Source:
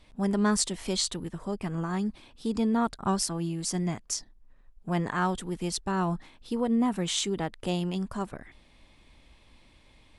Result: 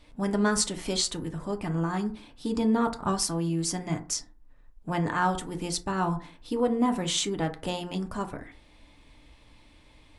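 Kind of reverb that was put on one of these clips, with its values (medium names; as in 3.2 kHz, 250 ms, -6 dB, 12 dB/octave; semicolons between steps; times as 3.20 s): FDN reverb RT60 0.4 s, low-frequency decay 1×, high-frequency decay 0.4×, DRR 5 dB; trim +1 dB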